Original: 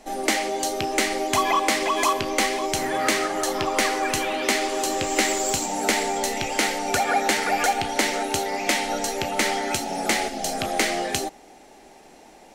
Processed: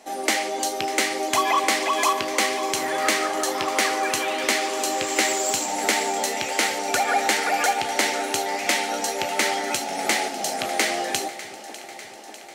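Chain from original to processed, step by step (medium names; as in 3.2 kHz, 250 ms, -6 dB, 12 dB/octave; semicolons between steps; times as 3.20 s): high-pass 390 Hz 6 dB/octave; echo whose repeats swap between lows and highs 299 ms, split 1.1 kHz, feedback 82%, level -13 dB; trim +1 dB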